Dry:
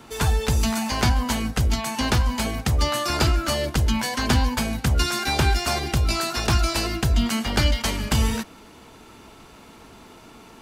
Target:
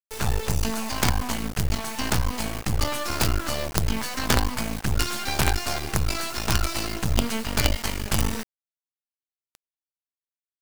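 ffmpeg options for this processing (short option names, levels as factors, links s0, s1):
-af "equalizer=f=3500:t=o:w=0.3:g=-3.5,acrusher=bits=3:dc=4:mix=0:aa=0.000001"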